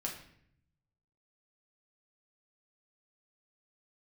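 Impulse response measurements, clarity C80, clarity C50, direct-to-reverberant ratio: 10.5 dB, 7.0 dB, -1.5 dB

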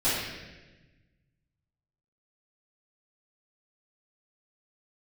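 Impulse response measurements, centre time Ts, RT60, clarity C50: 90 ms, 1.2 s, -1.0 dB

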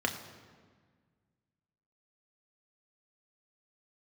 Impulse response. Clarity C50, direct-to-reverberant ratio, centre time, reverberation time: 9.5 dB, 3.0 dB, 23 ms, 1.6 s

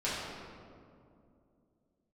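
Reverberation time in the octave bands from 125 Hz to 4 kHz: 3.2, 3.4, 2.8, 2.2, 1.5, 1.1 s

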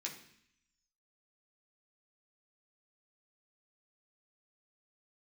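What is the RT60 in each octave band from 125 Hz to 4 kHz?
0.90, 0.85, 0.60, 0.70, 0.85, 0.85 s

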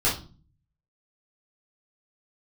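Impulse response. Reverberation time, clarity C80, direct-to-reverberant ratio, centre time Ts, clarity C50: 0.40 s, 14.0 dB, -8.5 dB, 29 ms, 7.0 dB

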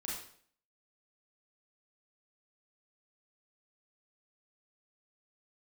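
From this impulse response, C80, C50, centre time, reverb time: 6.0 dB, 1.0 dB, 57 ms, 0.55 s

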